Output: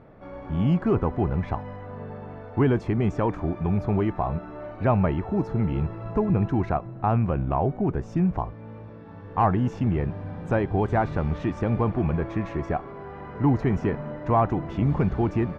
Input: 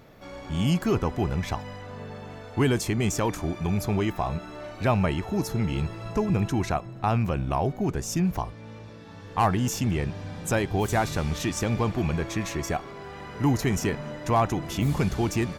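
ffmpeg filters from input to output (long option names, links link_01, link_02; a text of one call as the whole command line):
ffmpeg -i in.wav -af "lowpass=1400,volume=2dB" out.wav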